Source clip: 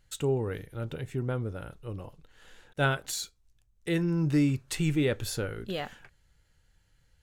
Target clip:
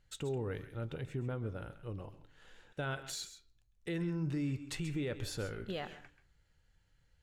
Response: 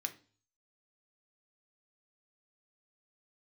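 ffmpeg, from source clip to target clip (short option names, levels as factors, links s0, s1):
-filter_complex "[0:a]highshelf=f=9100:g=-12,alimiter=level_in=1.06:limit=0.0631:level=0:latency=1:release=92,volume=0.944,asplit=2[s0][s1];[1:a]atrim=start_sample=2205,adelay=133[s2];[s1][s2]afir=irnorm=-1:irlink=0,volume=0.266[s3];[s0][s3]amix=inputs=2:normalize=0,volume=0.596"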